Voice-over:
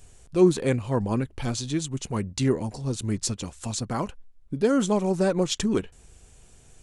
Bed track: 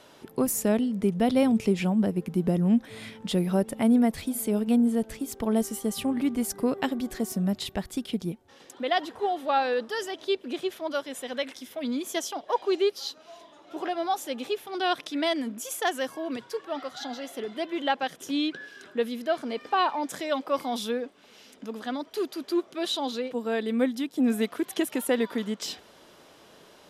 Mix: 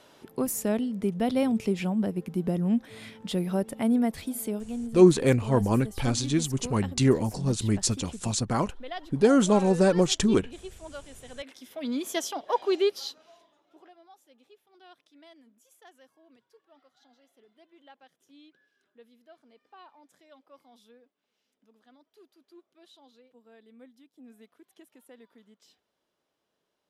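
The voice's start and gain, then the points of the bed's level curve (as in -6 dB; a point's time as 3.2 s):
4.60 s, +2.0 dB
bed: 4.47 s -3 dB
4.67 s -12 dB
11.26 s -12 dB
11.97 s 0 dB
12.99 s 0 dB
14.02 s -27.5 dB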